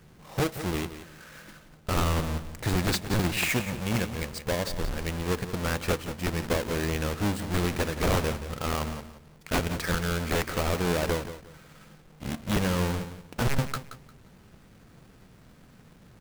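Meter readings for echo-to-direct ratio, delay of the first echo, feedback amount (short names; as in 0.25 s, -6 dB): -12.0 dB, 0.176 s, 24%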